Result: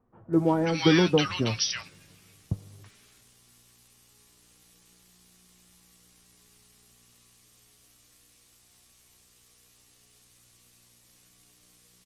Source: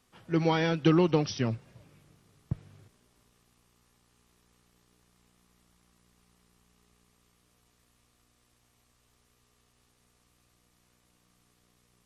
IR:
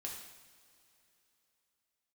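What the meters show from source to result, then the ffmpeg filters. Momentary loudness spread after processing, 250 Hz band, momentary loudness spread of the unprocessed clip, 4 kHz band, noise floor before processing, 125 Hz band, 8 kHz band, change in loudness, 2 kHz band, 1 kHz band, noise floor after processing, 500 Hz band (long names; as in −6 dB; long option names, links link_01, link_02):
16 LU, +3.0 dB, 16 LU, +9.5 dB, −70 dBFS, +1.0 dB, can't be measured, +3.0 dB, +5.5 dB, +2.0 dB, −61 dBFS, +2.5 dB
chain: -filter_complex "[0:a]highshelf=frequency=2900:gain=11,acrossover=split=1100[link_01][link_02];[link_02]adelay=330[link_03];[link_01][link_03]amix=inputs=2:normalize=0,flanger=delay=8.6:depth=2.8:regen=48:speed=0.28:shape=triangular,volume=7dB"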